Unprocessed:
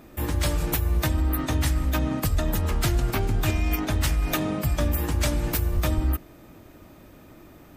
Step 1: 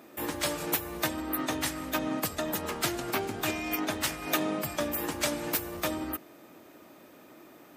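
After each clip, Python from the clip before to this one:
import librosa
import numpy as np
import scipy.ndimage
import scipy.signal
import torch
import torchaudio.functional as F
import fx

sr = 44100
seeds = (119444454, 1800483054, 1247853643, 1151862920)

y = scipy.signal.sosfilt(scipy.signal.butter(2, 280.0, 'highpass', fs=sr, output='sos'), x)
y = y * 10.0 ** (-1.0 / 20.0)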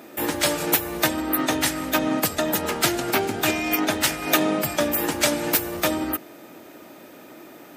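y = fx.low_shelf(x, sr, hz=71.0, db=-9.0)
y = fx.notch(y, sr, hz=1100.0, q=8.7)
y = y * 10.0 ** (9.0 / 20.0)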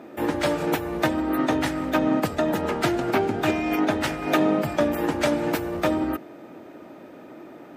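y = fx.lowpass(x, sr, hz=1100.0, slope=6)
y = y * 10.0 ** (2.5 / 20.0)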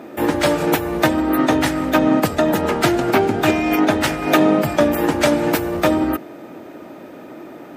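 y = fx.high_shelf(x, sr, hz=7000.0, db=4.5)
y = y * 10.0 ** (6.5 / 20.0)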